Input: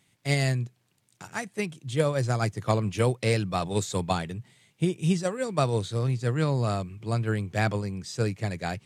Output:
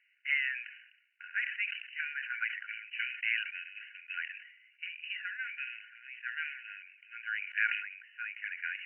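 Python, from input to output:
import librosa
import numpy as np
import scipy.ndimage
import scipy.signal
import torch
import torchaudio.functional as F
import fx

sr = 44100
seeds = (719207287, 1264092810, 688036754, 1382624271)

y = fx.brickwall_bandpass(x, sr, low_hz=1400.0, high_hz=3000.0)
y = fx.sustainer(y, sr, db_per_s=70.0)
y = y * 10.0 ** (2.0 / 20.0)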